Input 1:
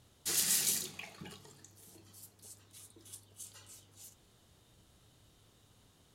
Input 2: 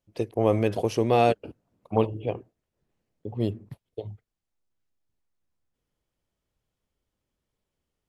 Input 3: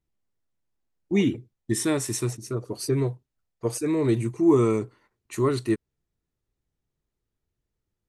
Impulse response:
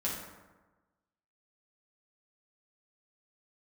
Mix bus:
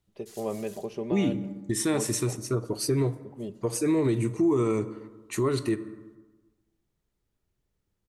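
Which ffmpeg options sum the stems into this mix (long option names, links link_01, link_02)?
-filter_complex "[0:a]volume=-17dB[link_01];[1:a]highshelf=frequency=3900:gain=-10,aecho=1:1:5:0.64,volume=-11dB,asplit=3[link_02][link_03][link_04];[link_03]volume=-20dB[link_05];[2:a]volume=2dB,asplit=2[link_06][link_07];[link_07]volume=-17dB[link_08];[link_04]apad=whole_len=271170[link_09];[link_01][link_09]sidechaincompress=threshold=-35dB:ratio=8:attack=43:release=162[link_10];[3:a]atrim=start_sample=2205[link_11];[link_05][link_08]amix=inputs=2:normalize=0[link_12];[link_12][link_11]afir=irnorm=-1:irlink=0[link_13];[link_10][link_02][link_06][link_13]amix=inputs=4:normalize=0,alimiter=limit=-17dB:level=0:latency=1:release=150"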